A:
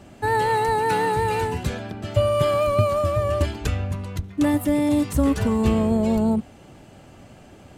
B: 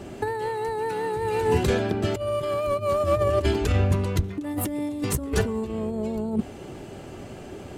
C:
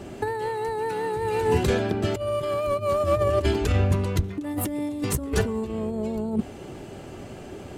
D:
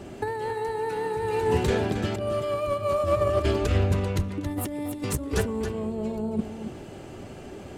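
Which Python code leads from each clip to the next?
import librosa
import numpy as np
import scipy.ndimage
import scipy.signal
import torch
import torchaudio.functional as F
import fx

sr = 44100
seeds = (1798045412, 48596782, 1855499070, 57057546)

y1 = fx.peak_eq(x, sr, hz=390.0, db=9.5, octaves=0.45)
y1 = fx.over_compress(y1, sr, threshold_db=-23.0, ratio=-0.5)
y2 = y1
y3 = y2 + 10.0 ** (-8.5 / 20.0) * np.pad(y2, (int(274 * sr / 1000.0), 0))[:len(y2)]
y3 = fx.doppler_dist(y3, sr, depth_ms=0.17)
y3 = y3 * 10.0 ** (-2.0 / 20.0)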